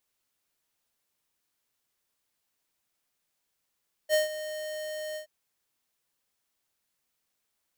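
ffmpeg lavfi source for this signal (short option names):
-f lavfi -i "aevalsrc='0.0794*(2*lt(mod(616*t,1),0.5)-1)':d=1.174:s=44100,afade=t=in:d=0.049,afade=t=out:st=0.049:d=0.142:silence=0.2,afade=t=out:st=1.07:d=0.104"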